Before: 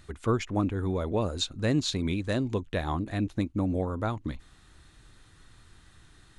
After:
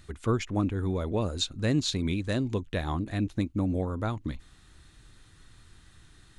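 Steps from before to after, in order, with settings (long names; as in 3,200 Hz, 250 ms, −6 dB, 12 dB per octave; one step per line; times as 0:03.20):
parametric band 790 Hz −3.5 dB 2.3 octaves
level +1 dB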